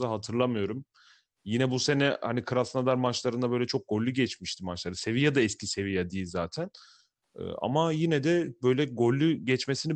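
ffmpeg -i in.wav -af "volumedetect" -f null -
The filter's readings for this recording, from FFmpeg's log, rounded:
mean_volume: -28.6 dB
max_volume: -11.3 dB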